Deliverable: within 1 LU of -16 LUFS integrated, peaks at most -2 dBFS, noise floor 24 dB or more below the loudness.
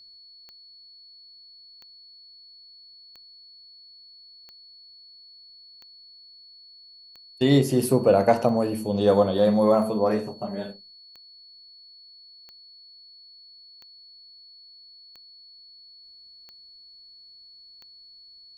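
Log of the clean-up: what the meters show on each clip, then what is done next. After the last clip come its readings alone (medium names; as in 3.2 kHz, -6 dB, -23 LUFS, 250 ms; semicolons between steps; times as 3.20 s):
clicks found 14; steady tone 4.4 kHz; tone level -47 dBFS; loudness -22.0 LUFS; peak level -5.5 dBFS; loudness target -16.0 LUFS
-> de-click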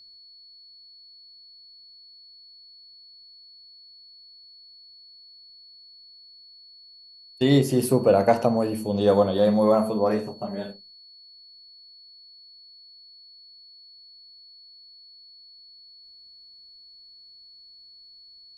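clicks found 0; steady tone 4.4 kHz; tone level -47 dBFS
-> band-stop 4.4 kHz, Q 30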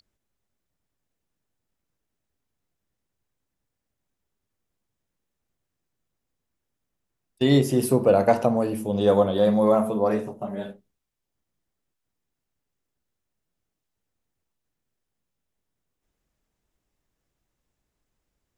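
steady tone not found; loudness -21.5 LUFS; peak level -5.5 dBFS; loudness target -16.0 LUFS
-> trim +5.5 dB; peak limiter -2 dBFS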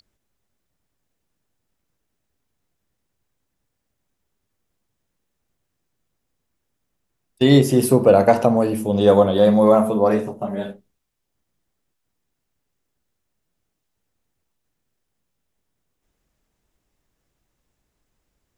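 loudness -16.0 LUFS; peak level -2.0 dBFS; noise floor -77 dBFS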